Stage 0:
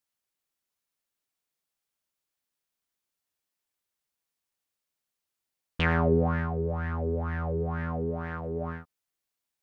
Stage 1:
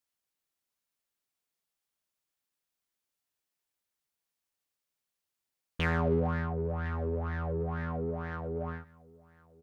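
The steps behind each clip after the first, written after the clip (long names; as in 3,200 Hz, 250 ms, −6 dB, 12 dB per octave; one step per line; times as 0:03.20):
in parallel at −3.5 dB: soft clipping −30.5 dBFS, distortion −7 dB
on the sum: single-tap delay 1,058 ms −23.5 dB
level −6 dB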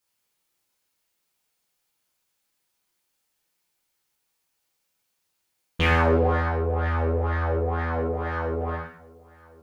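reverb whose tail is shaped and stops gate 220 ms falling, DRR −4.5 dB
level +5.5 dB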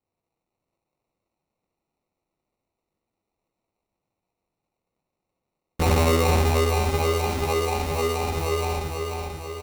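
low-pass that shuts in the quiet parts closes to 2,600 Hz
decimation without filtering 27×
repeating echo 488 ms, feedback 58%, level −4.5 dB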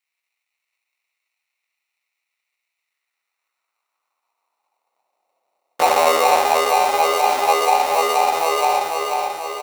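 in parallel at +2 dB: brickwall limiter −18.5 dBFS, peak gain reduction 9 dB
on the sum: high-pass filter sweep 2,100 Hz → 690 Hz, 0:02.77–0:05.33
level +1 dB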